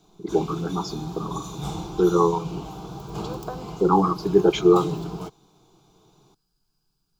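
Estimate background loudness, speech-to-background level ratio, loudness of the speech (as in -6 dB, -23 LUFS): -35.5 LUFS, 13.5 dB, -22.0 LUFS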